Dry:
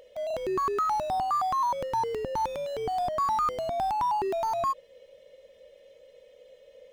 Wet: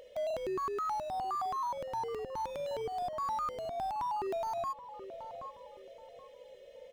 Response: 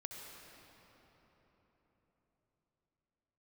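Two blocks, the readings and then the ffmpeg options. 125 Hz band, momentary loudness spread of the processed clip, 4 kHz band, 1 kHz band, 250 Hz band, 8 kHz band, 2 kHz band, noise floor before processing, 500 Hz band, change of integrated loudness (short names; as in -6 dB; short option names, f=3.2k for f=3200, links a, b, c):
-8.5 dB, 18 LU, -6.5 dB, -8.0 dB, -7.0 dB, -8.0 dB, -7.0 dB, -57 dBFS, -5.5 dB, -8.0 dB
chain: -filter_complex "[0:a]asplit=2[a][b];[b]adelay=776,lowpass=f=1.3k:p=1,volume=-16dB,asplit=2[c][d];[d]adelay=776,lowpass=f=1.3k:p=1,volume=0.29,asplit=2[e][f];[f]adelay=776,lowpass=f=1.3k:p=1,volume=0.29[g];[a][c][e][g]amix=inputs=4:normalize=0,alimiter=level_in=6dB:limit=-24dB:level=0:latency=1:release=463,volume=-6dB"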